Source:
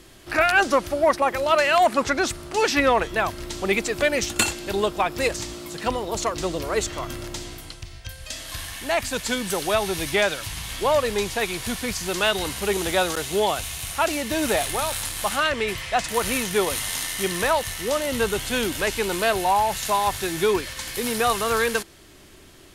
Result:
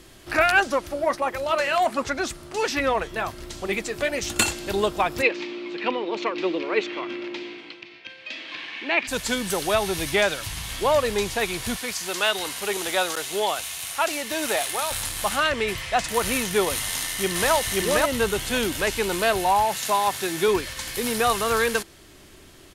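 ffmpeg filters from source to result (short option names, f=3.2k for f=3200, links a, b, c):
-filter_complex "[0:a]asplit=3[a][b][c];[a]afade=t=out:st=0.59:d=0.02[d];[b]flanger=delay=1.2:depth=7.2:regen=-61:speed=1.4:shape=sinusoidal,afade=t=in:st=0.59:d=0.02,afade=t=out:st=4.24:d=0.02[e];[c]afade=t=in:st=4.24:d=0.02[f];[d][e][f]amix=inputs=3:normalize=0,asplit=3[g][h][i];[g]afade=t=out:st=5.21:d=0.02[j];[h]highpass=f=230:w=0.5412,highpass=f=230:w=1.3066,equalizer=f=340:t=q:w=4:g=6,equalizer=f=670:t=q:w=4:g=-6,equalizer=f=1.3k:t=q:w=4:g=-3,equalizer=f=2.4k:t=q:w=4:g=10,lowpass=f=3.9k:w=0.5412,lowpass=f=3.9k:w=1.3066,afade=t=in:st=5.21:d=0.02,afade=t=out:st=9.07:d=0.02[k];[i]afade=t=in:st=9.07:d=0.02[l];[j][k][l]amix=inputs=3:normalize=0,asettb=1/sr,asplit=3[m][n][o];[m]atrim=end=11.774[p];[n]atrim=start=11.77:end=14.91,asetpts=PTS-STARTPTS,afade=t=in:d=0.004:c=qsin,afade=t=out:st=3.136:d=0.004:c=qsin,highpass=f=550:p=1[q];[o]atrim=start=14.906[r];[p][q]acrossfade=d=0.004:c1=hsin:c2=qsin[s];[s][r]acrossfade=d=0.004:c1=qsin:c2=hsin,asplit=2[t][u];[u]afade=t=in:st=16.82:d=0.01,afade=t=out:st=17.52:d=0.01,aecho=0:1:530|1060:0.944061|0.0944061[v];[t][v]amix=inputs=2:normalize=0,asettb=1/sr,asplit=3[w][x][y];[w]atrim=end=19.654[z];[x]atrim=start=19.65:end=20.48,asetpts=PTS-STARTPTS,afade=t=in:d=0.004:c=qsin,afade=t=out:st=0.826:d=0.004:c=qsin,highpass=160[aa];[y]atrim=start=20.476[ab];[z][aa]acrossfade=d=0.004:c1=hsin:c2=qsin[ac];[ac][ab]acrossfade=d=0.004:c1=qsin:c2=hsin"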